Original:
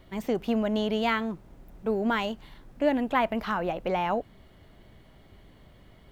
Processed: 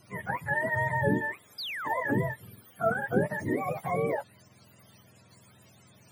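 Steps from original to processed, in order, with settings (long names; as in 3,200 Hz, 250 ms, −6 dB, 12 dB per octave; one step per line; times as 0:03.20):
frequency axis turned over on the octave scale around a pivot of 630 Hz
sound drawn into the spectrogram fall, 0:01.58–0:02.01, 460–5,200 Hz −36 dBFS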